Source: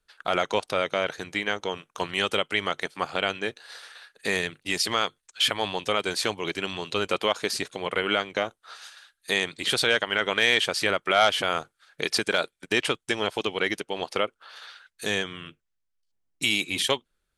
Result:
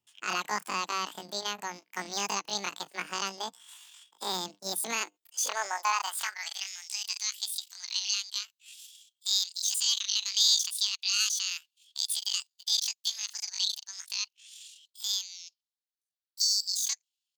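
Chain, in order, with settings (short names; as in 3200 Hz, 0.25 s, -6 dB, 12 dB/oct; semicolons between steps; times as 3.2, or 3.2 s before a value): high-pass sweep 82 Hz -> 2000 Hz, 4.66–6.97; pitch shift +12 st; gain -6.5 dB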